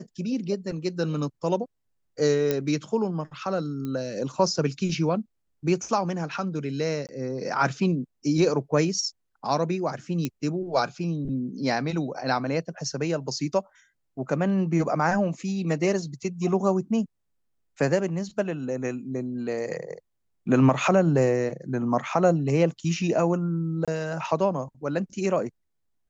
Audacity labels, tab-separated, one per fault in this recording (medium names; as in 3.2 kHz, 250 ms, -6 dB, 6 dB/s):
2.510000	2.510000	pop -11 dBFS
3.850000	3.850000	pop -21 dBFS
7.070000	7.090000	dropout 18 ms
10.250000	10.250000	pop -13 dBFS
23.850000	23.880000	dropout 26 ms